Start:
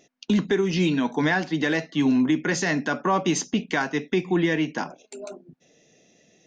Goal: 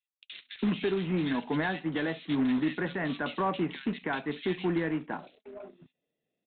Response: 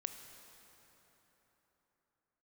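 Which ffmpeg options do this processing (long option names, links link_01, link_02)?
-filter_complex "[0:a]aresample=8000,acrusher=bits=3:mode=log:mix=0:aa=0.000001,aresample=44100,acrossover=split=2300[link_01][link_02];[link_01]adelay=330[link_03];[link_03][link_02]amix=inputs=2:normalize=0,agate=range=-18dB:threshold=-53dB:ratio=16:detection=peak,volume=-7dB"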